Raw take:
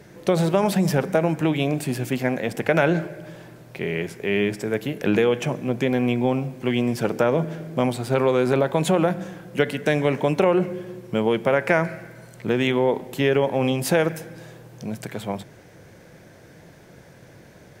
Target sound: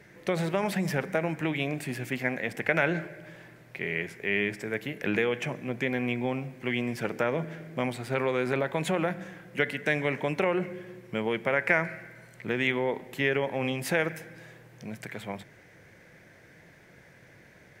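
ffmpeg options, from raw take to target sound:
-af "equalizer=f=2k:t=o:w=0.85:g=11,volume=-9dB"

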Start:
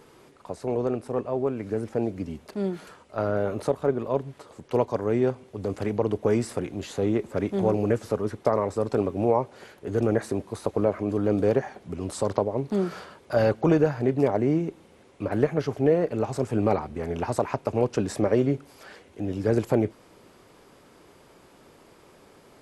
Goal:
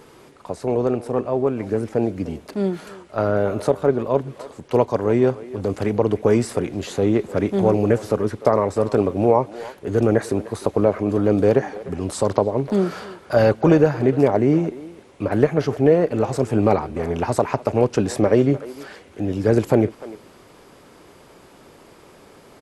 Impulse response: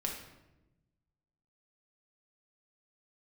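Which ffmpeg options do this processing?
-filter_complex "[0:a]asplit=2[a][b];[b]adelay=300,highpass=300,lowpass=3.4k,asoftclip=type=hard:threshold=-17dB,volume=-16dB[c];[a][c]amix=inputs=2:normalize=0,volume=6dB"

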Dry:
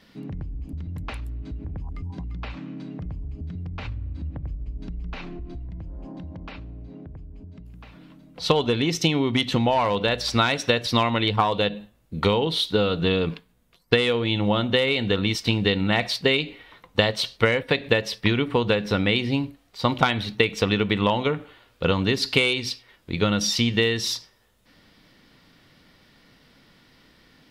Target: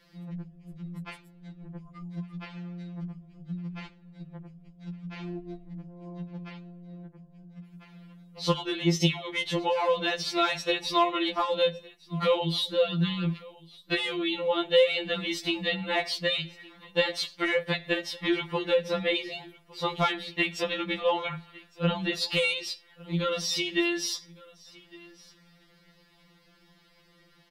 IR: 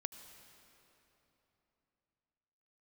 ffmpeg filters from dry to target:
-filter_complex "[0:a]asettb=1/sr,asplit=3[a][b][c];[a]atrim=end=21.024[d];[b]atrim=start=21.02:end=22.13,asetpts=PTS-STARTPTS,afade=t=in:d=0.004:c=qsin,afade=t=out:st=1.106:d=0.004:c=qsin,acrossover=split=4200[e][f];[f]acompressor=threshold=-45dB:ratio=4:attack=1:release=60[g];[e][g]amix=inputs=2:normalize=0[h];[c]atrim=start=22.126[i];[d][h]acrossfade=d=0.004:c1=hsin:c2=qsin[j];[j][i]acrossfade=d=0.004:c1=qsin:c2=hsin,asplit=2[k][l];[l]aecho=0:1:1159:0.0708[m];[k][m]amix=inputs=2:normalize=0,afftfilt=real='re*2.83*eq(mod(b,8),0)':imag='im*2.83*eq(mod(b,8),0)':win_size=2048:overlap=0.75,volume=-2.5dB"

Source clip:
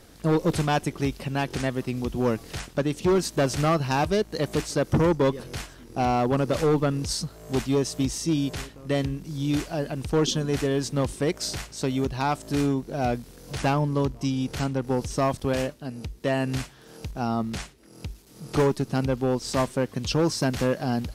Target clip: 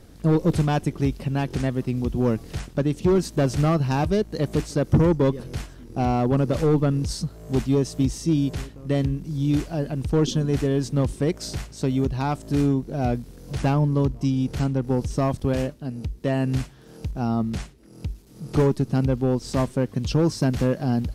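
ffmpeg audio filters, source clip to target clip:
-af "lowshelf=f=400:g=10.5,volume=-4dB"

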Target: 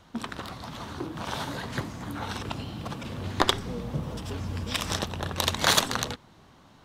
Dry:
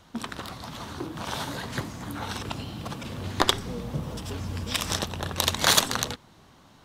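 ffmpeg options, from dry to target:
-af "highshelf=f=5k:g=-5.5"

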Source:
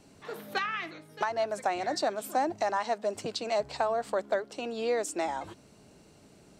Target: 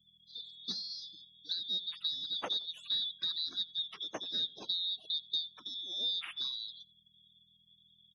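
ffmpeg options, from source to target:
-filter_complex "[0:a]afftfilt=real='real(if(lt(b,736),b+184*(1-2*mod(floor(b/184),2)),b),0)':imag='imag(if(lt(b,736),b+184*(1-2*mod(floor(b/184),2)),b),0)':win_size=2048:overlap=0.75,afftfilt=real='re*gte(hypot(re,im),0.00631)':imag='im*gte(hypot(re,im),0.00631)':win_size=1024:overlap=0.75,asplit=2[a][b];[b]acrusher=bits=5:mode=log:mix=0:aa=0.000001,volume=-10.5dB[c];[a][c]amix=inputs=2:normalize=0,aeval=exprs='val(0)+0.00141*(sin(2*PI*50*n/s)+sin(2*PI*2*50*n/s)/2+sin(2*PI*3*50*n/s)/3+sin(2*PI*4*50*n/s)/4+sin(2*PI*5*50*n/s)/5)':c=same,asetrate=35721,aresample=44100,highpass=220,lowpass=3.5k,asplit=2[d][e];[e]adelay=86,lowpass=f=1.3k:p=1,volume=-19dB,asplit=2[f][g];[g]adelay=86,lowpass=f=1.3k:p=1,volume=0.28[h];[d][f][h]amix=inputs=3:normalize=0,volume=-5.5dB"

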